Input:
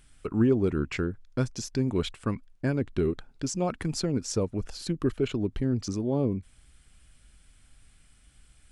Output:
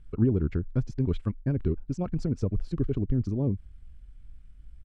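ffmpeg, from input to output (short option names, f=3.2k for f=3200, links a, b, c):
-af "aemphasis=mode=reproduction:type=riaa,atempo=1.8,volume=-7.5dB"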